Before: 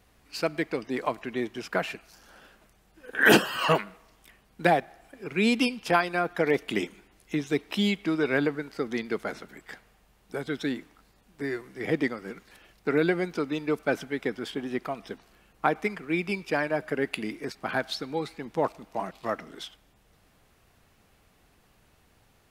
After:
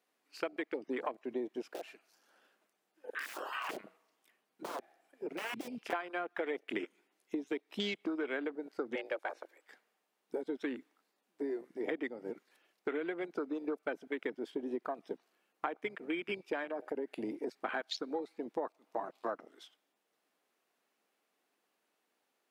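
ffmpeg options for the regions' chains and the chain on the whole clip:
ffmpeg -i in.wav -filter_complex "[0:a]asettb=1/sr,asplit=3[link_01][link_02][link_03];[link_01]atrim=end=1.624[link_04];[link_02]atrim=start=1.62:end=5.93,asetpts=PTS-STARTPTS,afade=type=in:duration=0.004:curve=qsin,afade=type=out:start_time=4.306:duration=0.004:curve=qsin,aeval=exprs='(mod(9.44*val(0)+1,2)-1)/9.44':channel_layout=same,acompressor=threshold=-32dB:ratio=20:attack=3.2:release=140:knee=1:detection=peak,equalizer=frequency=120:width=1.7:gain=5.5[link_05];[link_03]atrim=start=5.926[link_06];[link_04][link_05]acrossfade=duration=0.004:curve1=hsin:curve2=qsin[link_07];[link_07][link_06]acrossfade=duration=0.004:curve1=qsin:curve2=hsin,asettb=1/sr,asplit=3[link_08][link_09][link_10];[link_08]atrim=end=8.954[link_11];[link_09]atrim=start=8.95:end=9.67,asetpts=PTS-STARTPTS,afade=type=in:duration=0.004:curve=qsin,afade=type=out:start_time=0.716:duration=0.004:curve=qsin,highpass=frequency=160:width=0.5412,highpass=frequency=160:width=1.3066,equalizer=frequency=250:width_type=o:width=0.47:gain=-9,afreqshift=140[link_12];[link_10]atrim=start=9.666[link_13];[link_11][link_12]acrossfade=duration=0.004:curve1=hsin:curve2=qsin[link_14];[link_14][link_13]acrossfade=duration=0.004:curve1=qsin:curve2=hsin,asettb=1/sr,asplit=3[link_15][link_16][link_17];[link_15]atrim=end=16.644[link_18];[link_16]atrim=start=16.64:end=17.47,asetpts=PTS-STARTPTS,afade=type=in:duration=0.004:curve=qsin,afade=type=out:start_time=0.826:duration=0.004:curve=qsin,highpass=frequency=120:width=0.5412,highpass=frequency=120:width=1.3066,acompressor=threshold=-28dB:ratio=4:attack=3.2:release=140:knee=1:detection=peak[link_19];[link_17]atrim=start=17.466[link_20];[link_18][link_19]acrossfade=duration=0.004:curve1=hsin:curve2=qsin[link_21];[link_21][link_20]acrossfade=duration=0.004:curve1=qsin:curve2=hsin,highpass=frequency=270:width=0.5412,highpass=frequency=270:width=1.3066,afwtdn=0.0178,acompressor=threshold=-34dB:ratio=12,volume=1dB" out.wav

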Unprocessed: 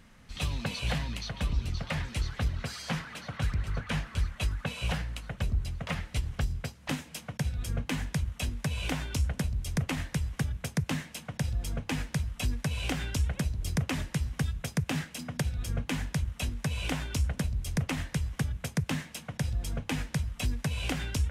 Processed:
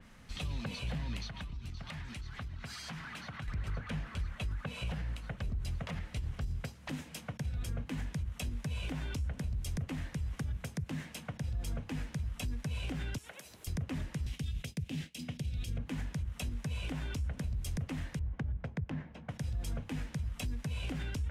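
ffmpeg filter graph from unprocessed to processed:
ffmpeg -i in.wav -filter_complex "[0:a]asettb=1/sr,asplit=3[link_01][link_02][link_03];[link_01]atrim=end=1.274[link_04];[link_02]atrim=start=1.27:end=3.48,asetpts=PTS-STARTPTS,afade=type=in:duration=0.004:curve=qsin,afade=type=out:start_time=2.206:duration=0.004:curve=qsin,equalizer=frequency=510:width=2.4:gain=-8.5,acompressor=threshold=-38dB:ratio=10:attack=3.2:release=140:knee=1:detection=peak[link_05];[link_03]atrim=start=3.476[link_06];[link_04][link_05]acrossfade=duration=0.004:curve1=hsin:curve2=qsin[link_07];[link_07][link_06]acrossfade=duration=0.004:curve1=qsin:curve2=hsin,asettb=1/sr,asplit=3[link_08][link_09][link_10];[link_08]atrim=end=13.184[link_11];[link_09]atrim=start=13.18:end=13.67,asetpts=PTS-STARTPTS,afade=type=in:duration=0.004:curve=qsin,afade=type=out:start_time=0.486:duration=0.004:curve=qsin,highpass=440,aemphasis=mode=production:type=50kf,acompressor=threshold=-44dB:ratio=2.5:attack=3.2:release=140:knee=1:detection=peak[link_12];[link_10]atrim=start=13.666[link_13];[link_11][link_12]acrossfade=duration=0.004:curve1=hsin:curve2=qsin[link_14];[link_14][link_13]acrossfade=duration=0.004:curve1=qsin:curve2=hsin,asettb=1/sr,asplit=3[link_15][link_16][link_17];[link_15]atrim=end=14.264[link_18];[link_16]atrim=start=14.26:end=15.78,asetpts=PTS-STARTPTS,afade=type=in:duration=0.004:curve=qsin,afade=type=out:start_time=1.516:duration=0.004:curve=qsin,agate=range=-33dB:threshold=-40dB:ratio=3:release=100:detection=peak,highshelf=frequency=2000:width_type=q:width=1.5:gain=11.5[link_19];[link_17]atrim=start=15.776[link_20];[link_18][link_19]acrossfade=duration=0.004:curve1=hsin:curve2=qsin[link_21];[link_21][link_20]acrossfade=duration=0.004:curve1=qsin:curve2=hsin,asettb=1/sr,asplit=3[link_22][link_23][link_24];[link_22]atrim=end=18.194[link_25];[link_23]atrim=start=18.19:end=19.29,asetpts=PTS-STARTPTS,afade=type=in:duration=0.004:curve=qsin,afade=type=out:start_time=1.096:duration=0.004:curve=qsin,bandreject=frequency=1200:width=14,asubboost=boost=3.5:cutoff=120,adynamicsmooth=sensitivity=1.5:basefreq=1100[link_26];[link_24]atrim=start=19.286[link_27];[link_25][link_26]acrossfade=duration=0.004:curve1=hsin:curve2=qsin[link_28];[link_28][link_27]acrossfade=duration=0.004:curve1=qsin:curve2=hsin,acrossover=split=470[link_29][link_30];[link_30]acompressor=threshold=-39dB:ratio=6[link_31];[link_29][link_31]amix=inputs=2:normalize=0,alimiter=level_in=5dB:limit=-24dB:level=0:latency=1:release=84,volume=-5dB,adynamicequalizer=threshold=0.00112:dfrequency=3800:dqfactor=0.7:tfrequency=3800:tqfactor=0.7:attack=5:release=100:ratio=0.375:range=2.5:mode=cutabove:tftype=highshelf" out.wav

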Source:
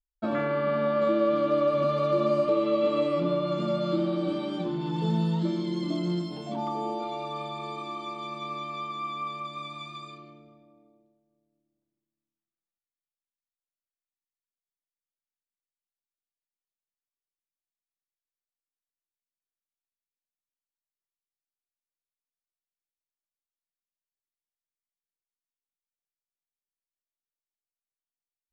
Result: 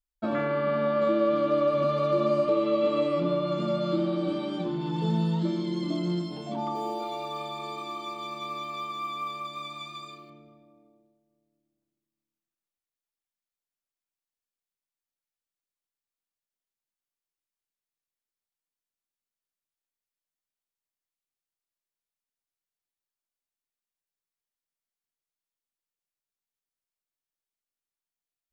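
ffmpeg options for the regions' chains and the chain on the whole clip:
ffmpeg -i in.wav -filter_complex "[0:a]asettb=1/sr,asplit=3[link_01][link_02][link_03];[link_01]atrim=end=6.754[link_04];[link_02]atrim=start=6.75:end=10.3,asetpts=PTS-STARTPTS,afade=type=in:duration=0.004:curve=qsin,afade=type=out:start_time=3.546:duration=0.004:curve=qsin,bass=frequency=250:gain=-5,treble=frequency=4000:gain=5,acrusher=bits=8:mode=log:mix=0:aa=0.000001[link_05];[link_03]atrim=start=10.296[link_06];[link_04][link_05]acrossfade=duration=0.004:curve1=hsin:curve2=qsin[link_07];[link_07][link_06]acrossfade=duration=0.004:curve1=qsin:curve2=hsin" out.wav

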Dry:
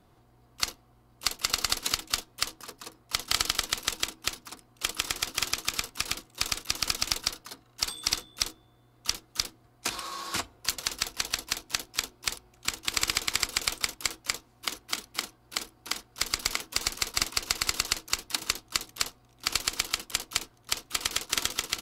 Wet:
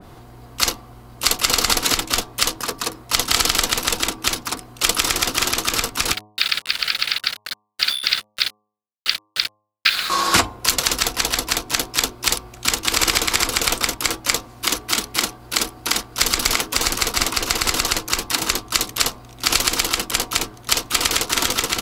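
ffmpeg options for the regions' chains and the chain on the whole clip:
ffmpeg -i in.wav -filter_complex "[0:a]asettb=1/sr,asplit=3[link_01][link_02][link_03];[link_01]atrim=end=6.134[link_04];[link_02]atrim=start=6.13:end=10.1,asetpts=PTS-STARTPTS,afade=type=in:duration=0.004:curve=qsin,afade=type=out:start_time=3.966:duration=0.004:curve=qsin,asuperpass=centerf=2600:order=12:qfactor=0.76,acrusher=bits=6:mix=0:aa=0.5[link_05];[link_03]atrim=start=10.096[link_06];[link_04][link_05]acrossfade=duration=0.004:curve1=hsin:curve2=qsin[link_07];[link_07][link_06]acrossfade=duration=0.004:curve1=qsin:curve2=hsin,bandreject=frequency=105.4:width_type=h:width=4,bandreject=frequency=210.8:width_type=h:width=4,bandreject=frequency=316.2:width_type=h:width=4,bandreject=frequency=421.6:width_type=h:width=4,bandreject=frequency=527:width_type=h:width=4,bandreject=frequency=632.4:width_type=h:width=4,bandreject=frequency=737.8:width_type=h:width=4,bandreject=frequency=843.2:width_type=h:width=4,bandreject=frequency=948.6:width_type=h:width=4,bandreject=frequency=1054:width_type=h:width=4,bandreject=frequency=1159.4:width_type=h:width=4,alimiter=level_in=19dB:limit=-1dB:release=50:level=0:latency=1,adynamicequalizer=threshold=0.0355:dfrequency=2200:dqfactor=0.7:tfrequency=2200:tqfactor=0.7:attack=5:release=100:ratio=0.375:range=2:mode=cutabove:tftype=highshelf" out.wav

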